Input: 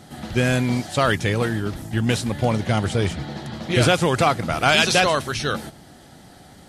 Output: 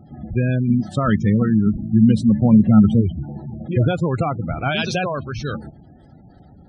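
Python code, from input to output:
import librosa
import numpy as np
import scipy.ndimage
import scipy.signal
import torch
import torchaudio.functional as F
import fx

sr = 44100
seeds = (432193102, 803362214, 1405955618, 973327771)

y = fx.spec_gate(x, sr, threshold_db=-15, keep='strong')
y = fx.low_shelf(y, sr, hz=290.0, db=11.0)
y = fx.small_body(y, sr, hz=(210.0, 1300.0, 2700.0), ring_ms=75, db=fx.line((0.67, 12.0), (3.0, 17.0)), at=(0.67, 3.0), fade=0.02)
y = y * librosa.db_to_amplitude(-6.0)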